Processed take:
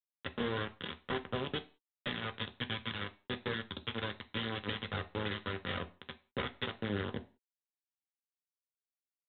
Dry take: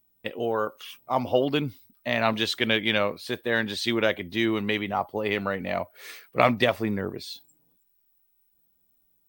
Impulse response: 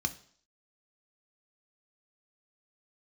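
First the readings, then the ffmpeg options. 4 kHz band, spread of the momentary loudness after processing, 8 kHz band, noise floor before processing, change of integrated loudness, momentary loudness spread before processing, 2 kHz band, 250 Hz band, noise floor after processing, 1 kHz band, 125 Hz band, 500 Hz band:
−9.5 dB, 6 LU, below −35 dB, −68 dBFS, −13.0 dB, 14 LU, −12.0 dB, −13.0 dB, below −85 dBFS, −14.0 dB, −7.0 dB, −15.0 dB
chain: -filter_complex "[0:a]highpass=frequency=500:poles=1,highshelf=frequency=2400:gain=4,acompressor=threshold=-33dB:ratio=16,aresample=8000,acrusher=bits=3:dc=4:mix=0:aa=0.000001,aresample=44100,asplit=2[link_01][link_02];[link_02]adelay=13,volume=-14dB[link_03];[link_01][link_03]amix=inputs=2:normalize=0[link_04];[1:a]atrim=start_sample=2205,afade=type=out:start_time=0.33:duration=0.01,atrim=end_sample=14994,asetrate=61740,aresample=44100[link_05];[link_04][link_05]afir=irnorm=-1:irlink=0,volume=1dB"

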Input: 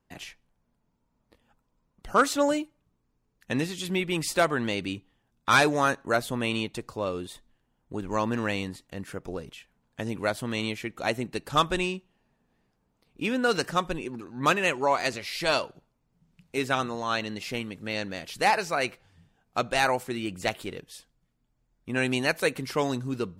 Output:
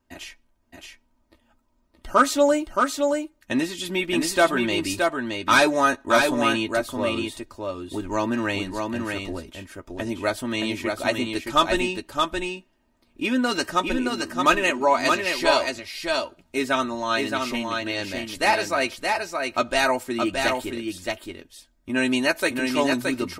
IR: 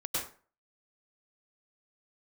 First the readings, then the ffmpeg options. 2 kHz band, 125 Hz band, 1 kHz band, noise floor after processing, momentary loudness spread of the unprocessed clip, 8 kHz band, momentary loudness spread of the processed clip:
+5.0 dB, −2.0 dB, +4.5 dB, −66 dBFS, 15 LU, +5.0 dB, 12 LU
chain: -filter_complex "[0:a]aecho=1:1:3.2:0.72,aecho=1:1:621:0.631,asplit=2[link_01][link_02];[1:a]atrim=start_sample=2205,atrim=end_sample=3969,adelay=12[link_03];[link_02][link_03]afir=irnorm=-1:irlink=0,volume=-7dB[link_04];[link_01][link_04]amix=inputs=2:normalize=0,volume=1.5dB"

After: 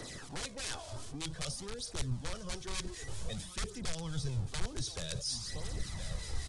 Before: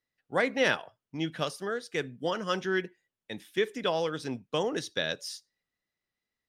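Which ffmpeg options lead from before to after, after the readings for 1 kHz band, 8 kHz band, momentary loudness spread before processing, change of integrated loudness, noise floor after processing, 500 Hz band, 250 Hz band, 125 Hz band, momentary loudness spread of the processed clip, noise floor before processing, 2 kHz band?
−13.0 dB, +6.0 dB, 12 LU, −8.5 dB, −48 dBFS, −16.5 dB, −9.5 dB, +4.0 dB, 5 LU, below −85 dBFS, −14.0 dB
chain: -filter_complex "[0:a]aeval=exprs='val(0)+0.5*0.015*sgn(val(0))':channel_layout=same,equalizer=frequency=2000:width_type=o:width=1.4:gain=-9,aecho=1:1:1018:0.0891,flanger=delay=0:depth=3.3:regen=-22:speed=0.53:shape=triangular,aeval=exprs='(mod(22.4*val(0)+1,2)-1)/22.4':channel_layout=same,acrossover=split=1600[link_01][link_02];[link_01]aeval=exprs='val(0)*(1-0.5/2+0.5/2*cos(2*PI*5.2*n/s))':channel_layout=same[link_03];[link_02]aeval=exprs='val(0)*(1-0.5/2-0.5/2*cos(2*PI*5.2*n/s))':channel_layout=same[link_04];[link_03][link_04]amix=inputs=2:normalize=0,areverse,acompressor=threshold=-40dB:ratio=6,areverse,asubboost=boost=8.5:cutoff=99,aresample=22050,aresample=44100,acrossover=split=180|3000[link_05][link_06][link_07];[link_06]acompressor=threshold=-52dB:ratio=6[link_08];[link_05][link_08][link_07]amix=inputs=3:normalize=0,bandreject=frequency=2800:width=20,volume=7.5dB"

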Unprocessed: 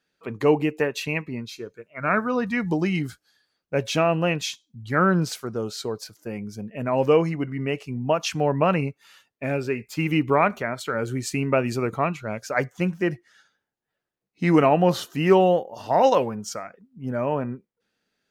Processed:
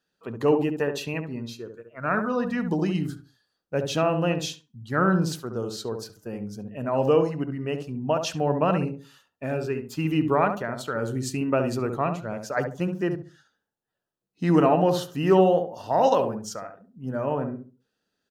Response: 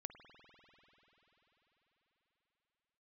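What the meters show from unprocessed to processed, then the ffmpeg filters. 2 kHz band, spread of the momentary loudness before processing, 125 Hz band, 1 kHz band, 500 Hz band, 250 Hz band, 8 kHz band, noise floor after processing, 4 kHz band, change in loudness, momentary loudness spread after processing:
−5.0 dB, 15 LU, −1.5 dB, −2.0 dB, −1.5 dB, −1.0 dB, −2.5 dB, −81 dBFS, −3.0 dB, −1.5 dB, 15 LU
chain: -filter_complex "[0:a]equalizer=frequency=2200:width=6.5:gain=-14.5,asplit=2[link_01][link_02];[link_02]adelay=69,lowpass=frequency=860:poles=1,volume=-4.5dB,asplit=2[link_03][link_04];[link_04]adelay=69,lowpass=frequency=860:poles=1,volume=0.32,asplit=2[link_05][link_06];[link_06]adelay=69,lowpass=frequency=860:poles=1,volume=0.32,asplit=2[link_07][link_08];[link_08]adelay=69,lowpass=frequency=860:poles=1,volume=0.32[link_09];[link_03][link_05][link_07][link_09]amix=inputs=4:normalize=0[link_10];[link_01][link_10]amix=inputs=2:normalize=0,volume=-2.5dB"

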